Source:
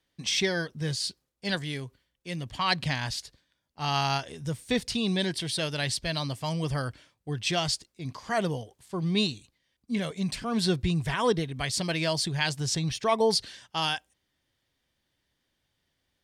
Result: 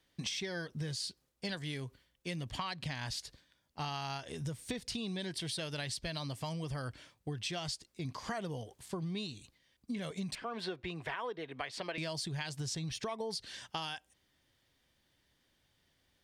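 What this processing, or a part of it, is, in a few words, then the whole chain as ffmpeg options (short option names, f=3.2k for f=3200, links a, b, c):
serial compression, leveller first: -filter_complex "[0:a]asettb=1/sr,asplit=3[a][b][c];[a]atrim=end=10.354[d];[b]atrim=start=10.35:end=11.98,asetpts=PTS-STARTPTS,afade=t=in:d=0.004:c=qsin,afade=t=out:st=1.626:d=0.004:c=qsin,acrossover=split=340 3200:gain=0.1 1 0.112[e][f][g];[e][f][g]amix=inputs=3:normalize=0[h];[c]atrim=start=11.976[i];[d][h]acrossfade=d=0.004:c1=hsin:c2=qsin[j];[j][i]acrossfade=d=0.004:c1=qsin:c2=hsin,acompressor=threshold=-29dB:ratio=2.5,acompressor=threshold=-40dB:ratio=5,volume=3dB"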